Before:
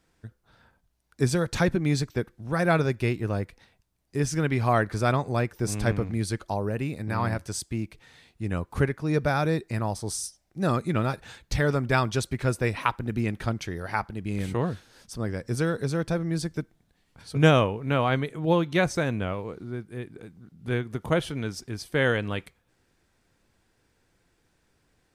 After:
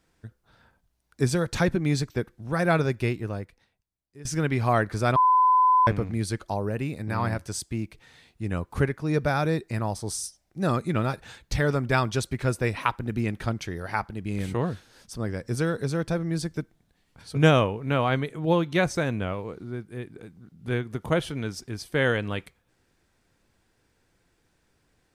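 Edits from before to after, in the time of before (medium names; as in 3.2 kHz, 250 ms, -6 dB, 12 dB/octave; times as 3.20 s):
3.04–4.25 s: fade out quadratic, to -19 dB
5.16–5.87 s: bleep 1.01 kHz -15.5 dBFS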